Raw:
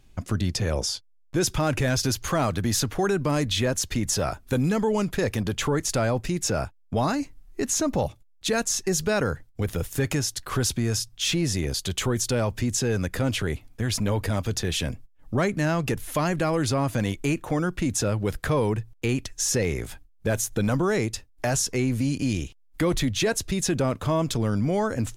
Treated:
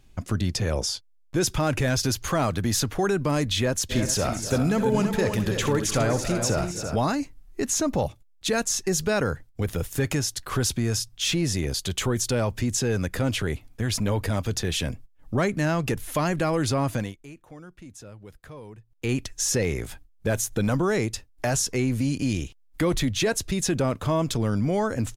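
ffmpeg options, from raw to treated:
-filter_complex "[0:a]asplit=3[a][b][c];[a]afade=t=out:st=3.89:d=0.02[d];[b]aecho=1:1:65|249|277|333|412:0.266|0.15|0.2|0.422|0.2,afade=t=in:st=3.89:d=0.02,afade=t=out:st=6.95:d=0.02[e];[c]afade=t=in:st=6.95:d=0.02[f];[d][e][f]amix=inputs=3:normalize=0,asplit=3[g][h][i];[g]atrim=end=17.16,asetpts=PTS-STARTPTS,afade=t=out:st=16.93:d=0.23:silence=0.112202[j];[h]atrim=start=17.16:end=18.89,asetpts=PTS-STARTPTS,volume=-19dB[k];[i]atrim=start=18.89,asetpts=PTS-STARTPTS,afade=t=in:d=0.23:silence=0.112202[l];[j][k][l]concat=n=3:v=0:a=1"

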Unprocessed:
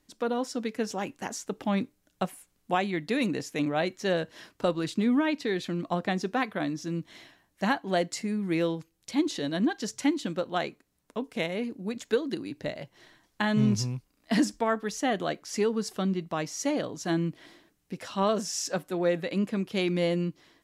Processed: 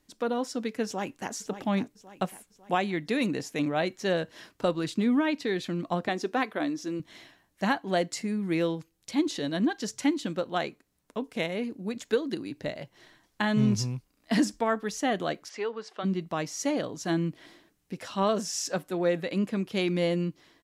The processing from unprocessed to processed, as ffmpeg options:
-filter_complex "[0:a]asplit=2[a][b];[b]afade=t=in:st=0.85:d=0.01,afade=t=out:st=1.32:d=0.01,aecho=0:1:550|1100|1650|2200|2750:0.266073|0.133036|0.0665181|0.0332591|0.0166295[c];[a][c]amix=inputs=2:normalize=0,asettb=1/sr,asplit=3[d][e][f];[d]atrim=end=6.084[g];[e]atrim=start=6.08:end=7,asetpts=PTS-STARTPTS,afade=t=in:d=0.004:c=qsin,afade=t=out:st=0.916:d=0.004:c=qsin,lowshelf=f=220:t=q:w=1.5:g=-8[h];[f]atrim=start=6.996[i];[g][h]acrossfade=d=0.004:c1=hsin:c2=qsin[j];[j][i]acrossfade=d=0.004:c1=qsin:c2=hsin,asplit=3[k][l][m];[k]afade=t=out:st=15.48:d=0.02[n];[l]highpass=540,lowpass=3.2k,afade=t=in:st=15.48:d=0.02,afade=t=out:st=16.03:d=0.02[o];[m]afade=t=in:st=16.03:d=0.02[p];[n][o][p]amix=inputs=3:normalize=0"

